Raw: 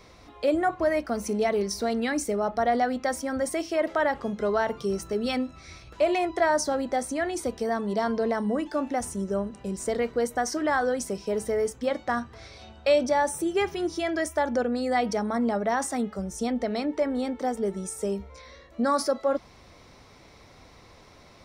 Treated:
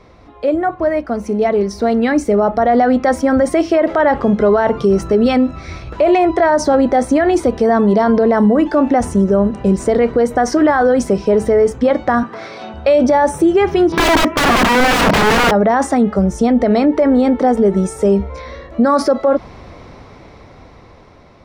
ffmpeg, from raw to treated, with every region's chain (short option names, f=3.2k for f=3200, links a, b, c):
-filter_complex "[0:a]asettb=1/sr,asplit=3[a][b][c];[a]atrim=end=12.234[d];[b]atrim=start=12.23:end=12.74,asetpts=PTS-STARTPTS,afade=t=in:d=0.004:c=qsin,afade=t=out:st=0.506:d=0.004:c=qsin,highpass=f=170:w=0.5412,highpass=f=170:w=1.3066,equalizer=f=1.3k:w=1.2:g=4.5[e];[c]atrim=start=12.736[f];[d][e]acrossfade=d=0.004:c1=hsin:c2=qsin[g];[g][f]acrossfade=d=0.004:c1=qsin:c2=hsin,asettb=1/sr,asplit=3[h][i][j];[h]atrim=end=13.924[k];[i]atrim=start=13.92:end=15.51,asetpts=PTS-STARTPTS,afade=t=in:d=0.004:c=qsin,afade=t=out:st=1.586:d=0.004:c=qsin,highpass=f=130:w=0.5412,highpass=f=130:w=1.3066,equalizer=f=160:t=q:w=4:g=4,equalizer=f=250:t=q:w=4:g=7,equalizer=f=400:t=q:w=4:g=7,equalizer=f=930:t=q:w=4:g=5,equalizer=f=1.4k:t=q:w=4:g=3,equalizer=f=2.6k:t=q:w=4:g=4,lowpass=f=3.1k:w=0.5412,lowpass=f=3.1k:w=1.3066,acontrast=81,aeval=exprs='(mod(7.94*val(0)+1,2)-1)/7.94':c=same[l];[j]atrim=start=15.506[m];[k][l]acrossfade=d=0.004:c1=hsin:c2=qsin[n];[n][m]acrossfade=d=0.004:c1=qsin:c2=hsin,lowpass=f=1.3k:p=1,dynaudnorm=f=680:g=7:m=11.5dB,alimiter=level_in=12.5dB:limit=-1dB:release=50:level=0:latency=1,volume=-4dB"